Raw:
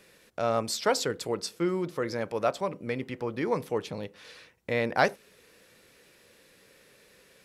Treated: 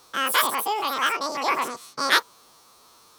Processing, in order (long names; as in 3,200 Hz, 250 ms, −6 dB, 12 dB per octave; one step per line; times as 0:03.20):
every bin's largest magnitude spread in time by 120 ms
change of speed 2.34×